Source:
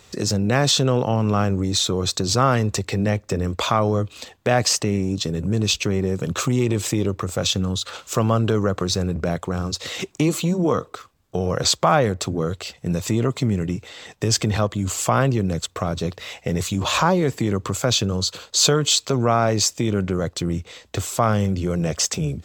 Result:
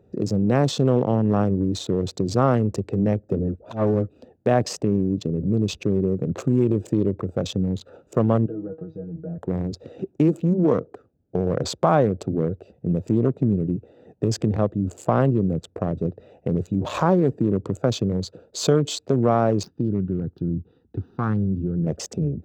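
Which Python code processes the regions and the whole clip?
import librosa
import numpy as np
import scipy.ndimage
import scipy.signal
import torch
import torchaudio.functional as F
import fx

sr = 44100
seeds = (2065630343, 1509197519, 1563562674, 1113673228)

y = fx.chain(x, sr, fx.auto_swell(attack_ms=108.0),
    fx.dispersion(late='highs', ms=53.0, hz=1000.0), at=(3.39, 4.09))
y = fx.chain(y, sr, fx.lowpass(hz=2600.0, slope=12),
    fx.comb_fb(f0_hz=160.0, decay_s=0.17, harmonics='all', damping=0.0, mix_pct=100), at=(8.46, 9.38))
y = fx.chain(y, sr, fx.median_filter(points=5),
    fx.fixed_phaser(hz=2200.0, stages=6),
    fx.doppler_dist(depth_ms=0.18), at=(19.63, 21.87))
y = fx.wiener(y, sr, points=41)
y = fx.highpass(y, sr, hz=320.0, slope=6)
y = fx.tilt_shelf(y, sr, db=10.0, hz=880.0)
y = y * 10.0 ** (-1.5 / 20.0)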